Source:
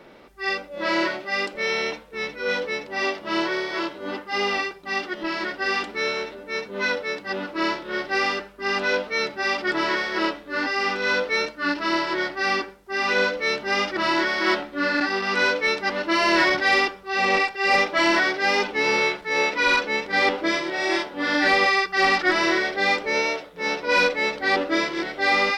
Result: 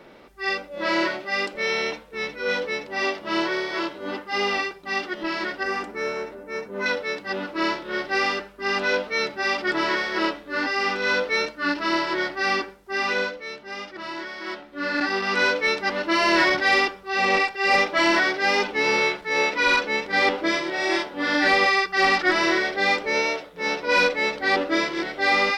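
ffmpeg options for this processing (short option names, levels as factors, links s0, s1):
-filter_complex "[0:a]asettb=1/sr,asplit=3[s0][s1][s2];[s0]atrim=end=5.634[s3];[s1]atrim=start=5.63:end=6.86,asetpts=PTS-STARTPTS,afade=t=in:d=0.004:c=qsin,afade=t=out:st=1.226:d=0.004:c=qsin,equalizer=f=3600:w=1.1:g=-12.5[s4];[s2]atrim=start=6.856[s5];[s3][s4]acrossfade=d=0.004:c1=hsin:c2=qsin[s6];[s6][s5]acrossfade=d=0.004:c1=qsin:c2=hsin,asplit=3[s7][s8][s9];[s7]atrim=end=13.44,asetpts=PTS-STARTPTS,afade=t=out:st=12.97:d=0.47:silence=0.266073[s10];[s8]atrim=start=13.44:end=14.62,asetpts=PTS-STARTPTS,volume=0.266[s11];[s9]atrim=start=14.62,asetpts=PTS-STARTPTS,afade=t=in:d=0.47:silence=0.266073[s12];[s10][s11][s12]concat=n=3:v=0:a=1"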